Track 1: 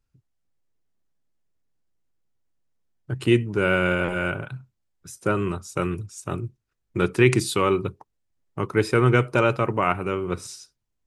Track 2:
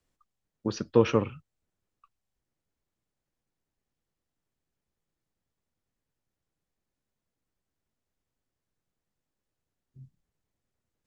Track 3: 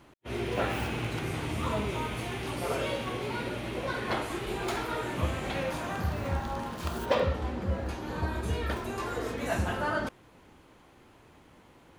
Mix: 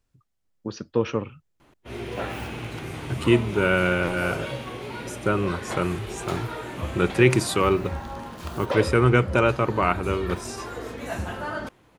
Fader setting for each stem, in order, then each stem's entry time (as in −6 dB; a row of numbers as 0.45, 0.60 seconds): 0.0, −2.0, −1.0 decibels; 0.00, 0.00, 1.60 seconds